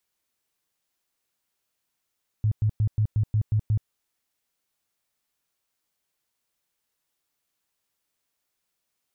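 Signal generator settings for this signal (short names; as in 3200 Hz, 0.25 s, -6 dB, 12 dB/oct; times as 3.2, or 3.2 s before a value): tone bursts 107 Hz, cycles 8, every 0.18 s, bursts 8, -18.5 dBFS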